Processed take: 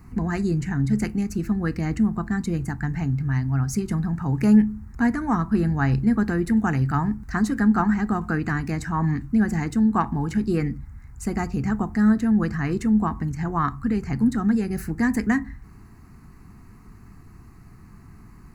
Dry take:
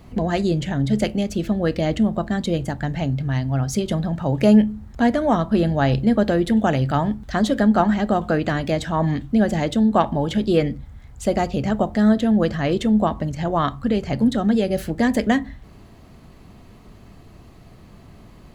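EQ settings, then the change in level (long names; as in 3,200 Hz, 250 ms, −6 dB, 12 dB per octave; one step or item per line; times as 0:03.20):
phaser with its sweep stopped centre 1,400 Hz, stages 4
0.0 dB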